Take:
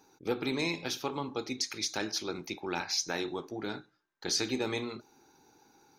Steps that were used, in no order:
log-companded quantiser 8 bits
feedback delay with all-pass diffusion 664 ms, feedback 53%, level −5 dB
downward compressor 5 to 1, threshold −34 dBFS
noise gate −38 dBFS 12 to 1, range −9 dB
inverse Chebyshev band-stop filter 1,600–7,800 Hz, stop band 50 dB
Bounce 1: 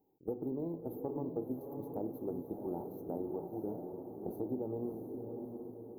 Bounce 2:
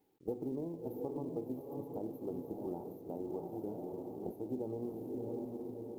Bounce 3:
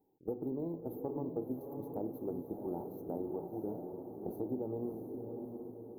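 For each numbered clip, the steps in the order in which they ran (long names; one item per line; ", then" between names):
noise gate, then log-companded quantiser, then inverse Chebyshev band-stop filter, then downward compressor, then feedback delay with all-pass diffusion
noise gate, then feedback delay with all-pass diffusion, then downward compressor, then inverse Chebyshev band-stop filter, then log-companded quantiser
log-companded quantiser, then noise gate, then inverse Chebyshev band-stop filter, then downward compressor, then feedback delay with all-pass diffusion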